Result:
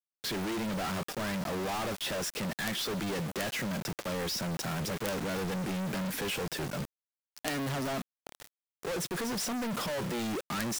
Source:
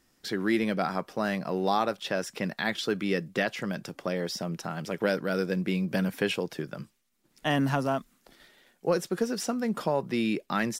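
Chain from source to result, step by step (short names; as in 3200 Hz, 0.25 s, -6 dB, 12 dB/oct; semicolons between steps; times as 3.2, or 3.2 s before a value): zero-crossing step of -36.5 dBFS; companded quantiser 2-bit; gain -8 dB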